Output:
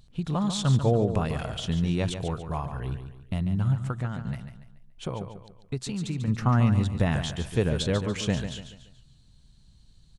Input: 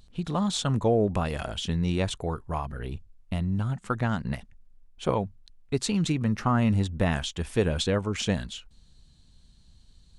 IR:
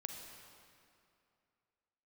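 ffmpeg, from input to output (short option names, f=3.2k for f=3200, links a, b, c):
-filter_complex "[0:a]asettb=1/sr,asplit=3[a][b][c];[a]atrim=end=3.774[d];[b]atrim=start=3.77:end=6.28,asetpts=PTS-STARTPTS,afade=t=in:d=0.004:c=qsin,afade=t=out:st=2.506:d=0.004:c=qsin,acompressor=threshold=-29dB:ratio=6[e];[c]atrim=start=6.276[f];[d][e]acrossfade=d=0.004:c1=hsin:c2=qsin[g];[g][f]acrossfade=d=0.004:c1=qsin:c2=hsin,equalizer=f=130:t=o:w=0.61:g=8,aecho=1:1:143|286|429|572:0.355|0.138|0.054|0.021,volume=-2dB"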